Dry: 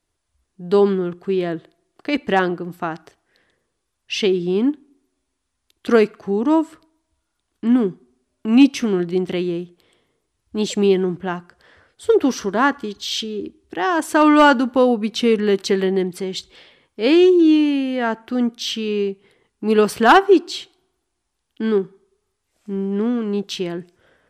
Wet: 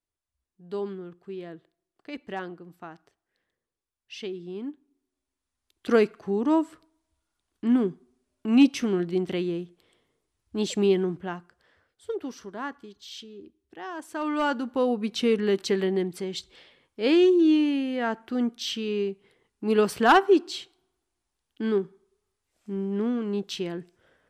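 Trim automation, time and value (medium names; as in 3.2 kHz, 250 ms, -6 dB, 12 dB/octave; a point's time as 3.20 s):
4.65 s -17 dB
5.98 s -6 dB
11.02 s -6 dB
12.17 s -17.5 dB
14.15 s -17.5 dB
15.06 s -6.5 dB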